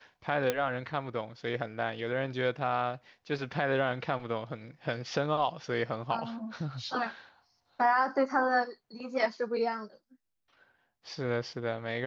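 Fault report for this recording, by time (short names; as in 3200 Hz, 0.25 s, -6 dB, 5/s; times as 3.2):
0.5 pop -13 dBFS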